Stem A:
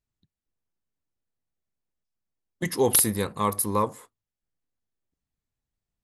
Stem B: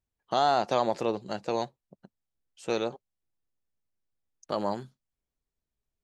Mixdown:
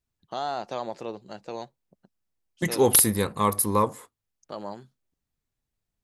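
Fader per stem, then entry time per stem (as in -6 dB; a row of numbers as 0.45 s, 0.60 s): +2.0 dB, -6.5 dB; 0.00 s, 0.00 s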